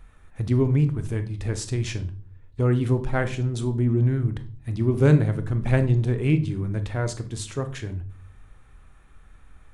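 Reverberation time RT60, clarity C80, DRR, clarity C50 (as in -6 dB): 0.45 s, 19.5 dB, 9.5 dB, 14.0 dB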